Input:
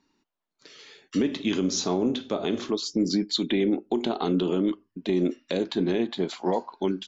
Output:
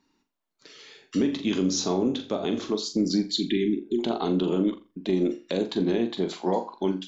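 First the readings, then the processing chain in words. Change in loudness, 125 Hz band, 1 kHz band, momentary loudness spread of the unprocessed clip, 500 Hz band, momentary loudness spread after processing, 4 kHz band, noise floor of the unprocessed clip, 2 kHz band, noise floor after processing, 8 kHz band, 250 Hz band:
0.0 dB, +0.5 dB, 0.0 dB, 4 LU, 0.0 dB, 4 LU, -0.5 dB, -82 dBFS, -2.0 dB, -74 dBFS, n/a, +0.5 dB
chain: spectral repair 3.32–3.97, 420–1600 Hz before; flutter echo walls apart 7.3 m, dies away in 0.28 s; dynamic EQ 2100 Hz, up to -3 dB, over -46 dBFS, Q 1

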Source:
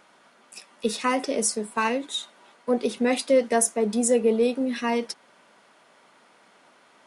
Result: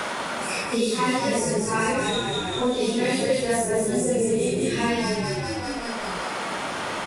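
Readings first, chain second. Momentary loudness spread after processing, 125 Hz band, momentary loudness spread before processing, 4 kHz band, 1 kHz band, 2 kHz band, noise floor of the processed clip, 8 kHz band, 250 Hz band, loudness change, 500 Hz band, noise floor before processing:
6 LU, n/a, 11 LU, +5.5 dB, +3.5 dB, +5.5 dB, -30 dBFS, -0.5 dB, +1.5 dB, 0.0 dB, +0.5 dB, -58 dBFS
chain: phase scrambler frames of 0.2 s; frequency-shifting echo 0.195 s, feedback 50%, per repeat -48 Hz, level -4.5 dB; three-band squash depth 100%

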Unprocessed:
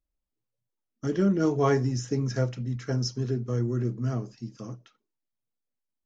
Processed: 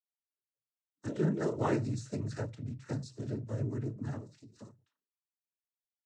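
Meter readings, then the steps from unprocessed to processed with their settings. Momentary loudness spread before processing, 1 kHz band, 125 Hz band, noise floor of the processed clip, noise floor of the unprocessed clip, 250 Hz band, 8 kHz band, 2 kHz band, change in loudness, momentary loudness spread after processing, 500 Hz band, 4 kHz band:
16 LU, -7.0 dB, -8.5 dB, under -85 dBFS, -85 dBFS, -8.0 dB, n/a, -6.5 dB, -8.5 dB, 15 LU, -8.5 dB, -14.0 dB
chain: spectral noise reduction 19 dB; noise vocoder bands 12; ending taper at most 140 dB/s; gain -7 dB

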